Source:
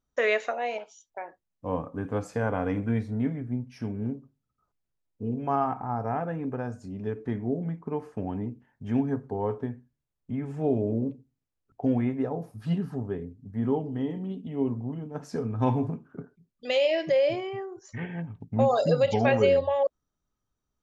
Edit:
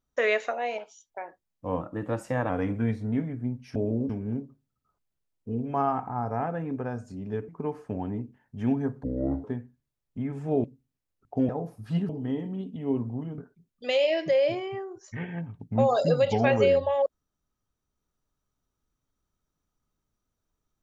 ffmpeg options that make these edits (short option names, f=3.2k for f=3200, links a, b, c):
-filter_complex "[0:a]asplit=12[a][b][c][d][e][f][g][h][i][j][k][l];[a]atrim=end=1.814[m];[b]atrim=start=1.81:end=2.57,asetpts=PTS-STARTPTS,asetrate=48951,aresample=44100[n];[c]atrim=start=2.566:end=3.832[o];[d]atrim=start=10.768:end=11.112[p];[e]atrim=start=3.828:end=7.222[q];[f]atrim=start=7.758:end=9.314[r];[g]atrim=start=9.31:end=9.57,asetpts=PTS-STARTPTS,asetrate=28224,aresample=44100[s];[h]atrim=start=9.566:end=10.772[t];[i]atrim=start=11.108:end=11.962[u];[j]atrim=start=12.248:end=12.852[v];[k]atrim=start=13.798:end=15.092[w];[l]atrim=start=16.188[x];[m][n]acrossfade=d=0.004:c1=hsin:c2=hsin[y];[y][o]acrossfade=d=0.004:c1=hsin:c2=hsin[z];[z][p]acrossfade=d=0.004:c1=hsin:c2=hsin[aa];[aa][q]acrossfade=d=0.004:c1=hsin:c2=hsin[ab];[ab][r]acrossfade=d=0.004:c1=hsin:c2=hsin[ac];[ac][s]acrossfade=d=0.004:c1=hsin:c2=hsin[ad];[ad][t]acrossfade=d=0.004:c1=hsin:c2=hsin[ae];[ae][u]acrossfade=d=0.004:c1=hsin:c2=hsin[af];[af][v]acrossfade=d=0.004:c1=hsin:c2=hsin[ag];[ag][w]acrossfade=d=0.004:c1=hsin:c2=hsin[ah];[ah][x]acrossfade=d=0.004:c1=hsin:c2=hsin"